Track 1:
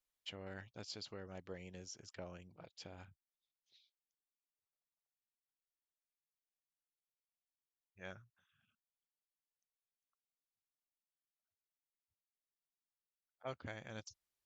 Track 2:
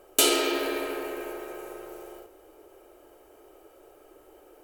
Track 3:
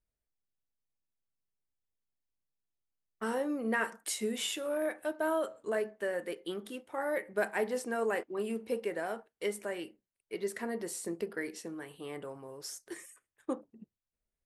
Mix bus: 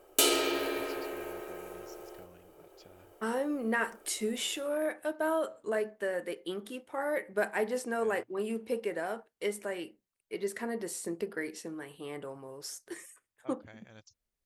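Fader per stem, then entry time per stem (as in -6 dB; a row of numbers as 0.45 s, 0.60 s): -5.5 dB, -4.0 dB, +1.0 dB; 0.00 s, 0.00 s, 0.00 s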